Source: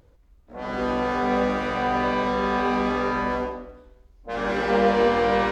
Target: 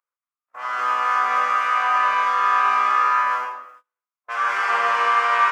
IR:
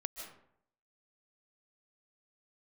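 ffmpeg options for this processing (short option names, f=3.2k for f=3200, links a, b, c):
-af "highpass=f=1.2k:t=q:w=5.2,aexciter=amount=1.7:drive=0.9:freq=2.1k,agate=range=-28dB:threshold=-45dB:ratio=16:detection=peak"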